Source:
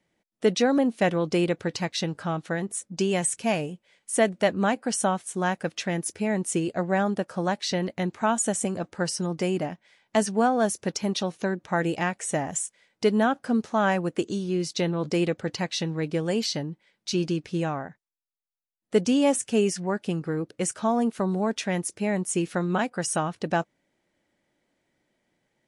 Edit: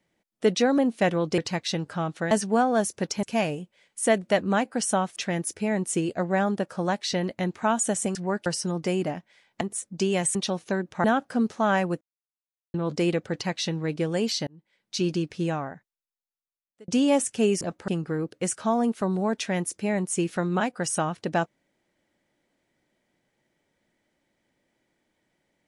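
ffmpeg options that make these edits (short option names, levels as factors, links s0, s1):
-filter_complex "[0:a]asplit=16[s0][s1][s2][s3][s4][s5][s6][s7][s8][s9][s10][s11][s12][s13][s14][s15];[s0]atrim=end=1.382[s16];[s1]atrim=start=1.668:end=2.602[s17];[s2]atrim=start=10.158:end=11.082[s18];[s3]atrim=start=3.338:end=5.272[s19];[s4]atrim=start=5.748:end=8.742[s20];[s5]atrim=start=19.748:end=20.062[s21];[s6]atrim=start=9.008:end=10.162[s22];[s7]atrim=start=2.598:end=3.342[s23];[s8]atrim=start=11.078:end=11.772[s24];[s9]atrim=start=13.178:end=14.15,asetpts=PTS-STARTPTS,afade=t=out:st=0.968:d=0.004:c=hsin[s25];[s10]atrim=start=14.15:end=14.88,asetpts=PTS-STARTPTS,volume=0[s26];[s11]atrim=start=14.88:end=16.61,asetpts=PTS-STARTPTS,afade=t=in:d=0.004:c=hsin,afade=t=out:st=1.726:d=0.004:c=hsin[s27];[s12]atrim=start=16.61:end=19.02,asetpts=PTS-STARTPTS,afade=t=in:d=0.51,afade=t=out:st=1.01:d=1.4[s28];[s13]atrim=start=19.02:end=19.752,asetpts=PTS-STARTPTS,afade=t=in:d=0.004:c=hsin[s29];[s14]atrim=start=8.738:end=9.012[s30];[s15]atrim=start=20.058[s31];[s16][s17]acrossfade=d=0.004:c1=hsin:c2=hsin[s32];[s32][s18]acrossfade=d=0.004:c1=hsin:c2=hsin[s33];[s33][s19]acrossfade=d=0.004:c1=hsin:c2=hsin[s34];[s34][s20]acrossfade=d=0.004:c1=hsin:c2=hsin[s35];[s35][s21]acrossfade=d=0.004:c1=hsin:c2=hsin[s36];[s36][s22]acrossfade=d=0.004:c1=hsin:c2=hsin[s37];[s37][s23]acrossfade=d=0.004:c1=hsin:c2=hsin[s38];[s38][s24]acrossfade=d=0.004:c1=hsin:c2=hsin[s39];[s25][s26][s27][s28][s29]concat=n=5:v=0:a=1[s40];[s39][s40]acrossfade=d=0.004:c1=hsin:c2=hsin[s41];[s41][s30]acrossfade=d=0.004:c1=hsin:c2=hsin[s42];[s42][s31]acrossfade=d=0.004:c1=hsin:c2=hsin"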